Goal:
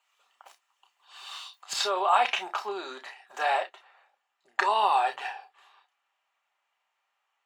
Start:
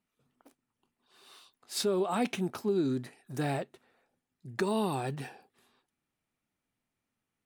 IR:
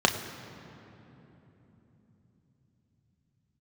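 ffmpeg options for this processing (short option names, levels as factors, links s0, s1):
-filter_complex "[0:a]highpass=f=750:w=0.5412,highpass=f=750:w=1.3066,asetnsamples=n=441:p=0,asendcmd='1.73 highshelf g -7.5',highshelf=f=3500:g=6.5[s0];[1:a]atrim=start_sample=2205,atrim=end_sample=3087[s1];[s0][s1]afir=irnorm=-1:irlink=0,volume=0.891"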